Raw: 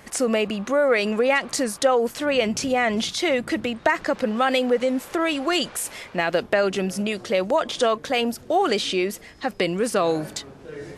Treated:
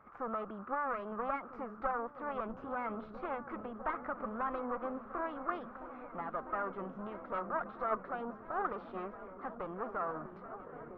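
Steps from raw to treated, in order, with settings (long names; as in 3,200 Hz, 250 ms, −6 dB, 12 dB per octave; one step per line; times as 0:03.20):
asymmetric clip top −25.5 dBFS
transistor ladder low-pass 1,200 Hz, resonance 75%
formants moved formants +2 semitones
echo whose low-pass opens from repeat to repeat 651 ms, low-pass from 200 Hz, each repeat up 1 octave, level −6 dB
level −5.5 dB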